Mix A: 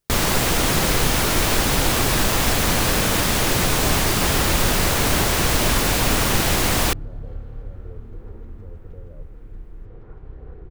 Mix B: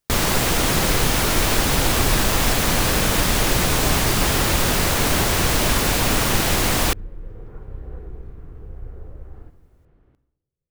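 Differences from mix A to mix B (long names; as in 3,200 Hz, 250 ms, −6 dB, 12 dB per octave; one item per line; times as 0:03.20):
speech −7.5 dB
second sound: entry −2.55 s
reverb: on, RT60 0.75 s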